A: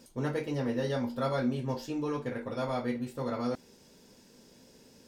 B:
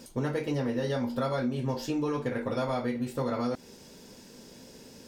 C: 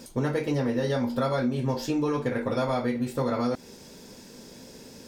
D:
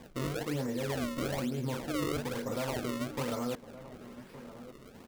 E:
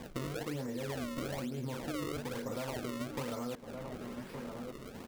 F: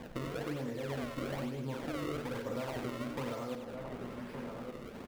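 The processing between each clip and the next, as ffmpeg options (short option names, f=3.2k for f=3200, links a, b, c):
-af "acompressor=threshold=-34dB:ratio=6,volume=7.5dB"
-af "bandreject=f=2.9k:w=26,volume=3.5dB"
-filter_complex "[0:a]alimiter=limit=-20dB:level=0:latency=1:release=36,acrusher=samples=31:mix=1:aa=0.000001:lfo=1:lforange=49.6:lforate=1.1,asplit=2[a][b];[b]adelay=1166,volume=-14dB,highshelf=f=4k:g=-26.2[c];[a][c]amix=inputs=2:normalize=0,volume=-6dB"
-af "acompressor=threshold=-41dB:ratio=6,volume=5dB"
-af "bass=f=250:g=-1,treble=f=4k:g=-7,aecho=1:1:52|94|203:0.237|0.422|0.224"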